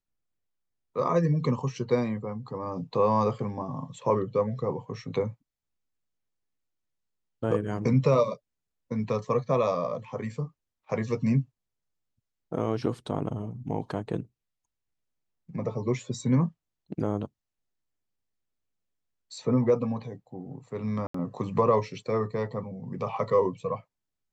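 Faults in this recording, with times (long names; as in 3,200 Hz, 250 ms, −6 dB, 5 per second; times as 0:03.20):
0:21.07–0:21.14: drop-out 74 ms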